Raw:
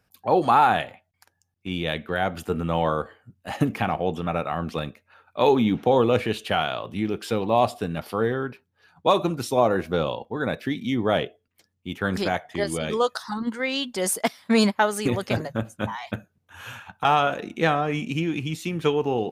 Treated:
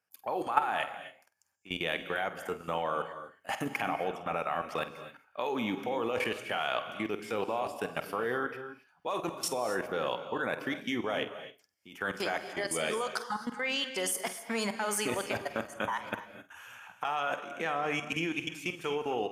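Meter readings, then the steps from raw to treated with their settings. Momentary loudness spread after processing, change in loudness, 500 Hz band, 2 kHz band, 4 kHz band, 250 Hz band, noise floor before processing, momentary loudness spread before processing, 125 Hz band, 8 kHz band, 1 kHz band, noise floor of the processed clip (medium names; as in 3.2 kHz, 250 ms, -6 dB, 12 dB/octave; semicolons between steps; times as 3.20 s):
9 LU, -9.0 dB, -10.0 dB, -4.0 dB, -6.0 dB, -12.5 dB, -74 dBFS, 13 LU, -17.0 dB, -3.5 dB, -9.5 dB, -67 dBFS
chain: high-pass 850 Hz 6 dB/octave; peaking EQ 3.9 kHz -12 dB 0.29 oct; level held to a coarse grid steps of 18 dB; on a send: flutter echo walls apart 8.3 m, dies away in 0.22 s; on the sum: gated-style reverb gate 290 ms rising, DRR 10.5 dB; trim +4 dB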